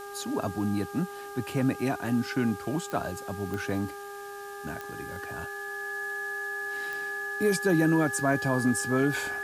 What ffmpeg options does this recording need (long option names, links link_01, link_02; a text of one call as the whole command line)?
ffmpeg -i in.wav -af "adeclick=threshold=4,bandreject=frequency=403.5:width_type=h:width=4,bandreject=frequency=807:width_type=h:width=4,bandreject=frequency=1210.5:width_type=h:width=4,bandreject=frequency=1614:width_type=h:width=4,bandreject=frequency=1700:width=30,afwtdn=0.0028" out.wav